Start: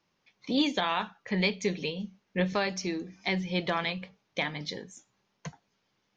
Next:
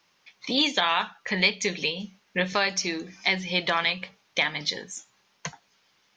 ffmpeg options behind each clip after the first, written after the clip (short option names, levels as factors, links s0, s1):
-filter_complex "[0:a]tiltshelf=f=640:g=-6.5,asplit=2[s0][s1];[s1]acompressor=threshold=0.0224:ratio=6,volume=1[s2];[s0][s2]amix=inputs=2:normalize=0"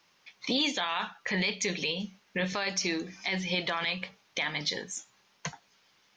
-af "alimiter=limit=0.112:level=0:latency=1:release=26"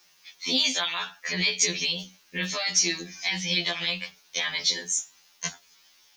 -af "crystalizer=i=5:c=0,afftfilt=real='re*2*eq(mod(b,4),0)':imag='im*2*eq(mod(b,4),0)':win_size=2048:overlap=0.75"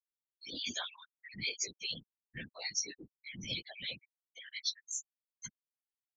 -af "tremolo=f=2.6:d=0.56,afftfilt=real='re*gte(hypot(re,im),0.0794)':imag='im*gte(hypot(re,im),0.0794)':win_size=1024:overlap=0.75,afftfilt=real='hypot(re,im)*cos(2*PI*random(0))':imag='hypot(re,im)*sin(2*PI*random(1))':win_size=512:overlap=0.75,volume=0.668"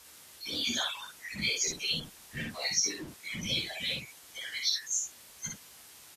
-filter_complex "[0:a]aeval=exprs='val(0)+0.5*0.00473*sgn(val(0))':c=same,asplit=2[s0][s1];[s1]aecho=0:1:13|58:0.447|0.668[s2];[s0][s2]amix=inputs=2:normalize=0,volume=1.58" -ar 44100 -c:a libvorbis -b:a 32k